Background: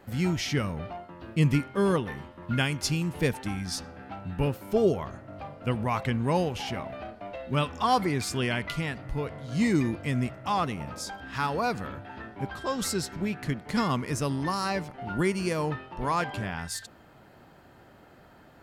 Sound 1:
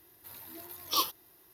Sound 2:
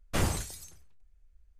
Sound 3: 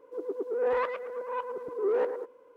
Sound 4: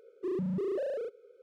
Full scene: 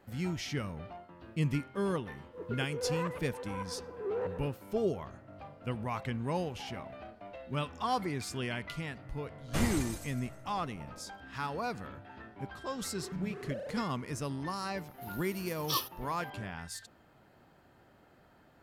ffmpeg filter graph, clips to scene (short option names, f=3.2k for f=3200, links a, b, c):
-filter_complex "[0:a]volume=-8dB[a];[2:a]aecho=1:1:155|310|465|620:0.398|0.135|0.046|0.0156[b];[4:a]equalizer=f=320:w=1.4:g=-15[c];[3:a]atrim=end=2.56,asetpts=PTS-STARTPTS,volume=-8dB,afade=t=in:d=0.004:c=hsin,afade=t=out:st=2.556:d=0.004:c=hsin,adelay=2220[d];[b]atrim=end=1.59,asetpts=PTS-STARTPTS,volume=-4dB,afade=t=in:d=0.004:c=hsin,afade=t=out:st=1.586:d=0.004:c=hsin,adelay=9400[e];[c]atrim=end=1.42,asetpts=PTS-STARTPTS,volume=-2.5dB,afade=t=in:d=0.004:c=hsin,afade=t=out:st=1.416:d=0.004:c=hsin,adelay=12730[f];[1:a]atrim=end=1.53,asetpts=PTS-STARTPTS,volume=-4dB,afade=t=in:d=0.004:c=hsin,afade=t=out:st=1.526:d=0.004:c=hsin,adelay=14770[g];[a][d][e][f][g]amix=inputs=5:normalize=0"